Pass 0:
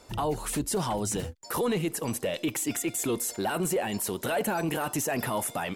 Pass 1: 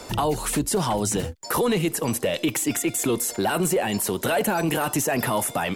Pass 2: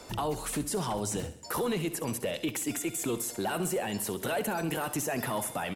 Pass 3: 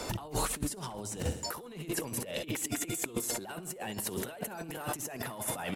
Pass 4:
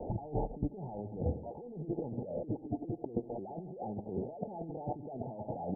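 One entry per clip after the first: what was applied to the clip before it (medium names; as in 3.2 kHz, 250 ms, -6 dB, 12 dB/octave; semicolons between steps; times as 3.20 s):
three bands compressed up and down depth 40%; trim +5.5 dB
feedback delay 66 ms, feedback 55%, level -14 dB; trim -8.5 dB
compressor with a negative ratio -38 dBFS, ratio -0.5; trim +2.5 dB
Chebyshev low-pass 860 Hz, order 8; trim +1 dB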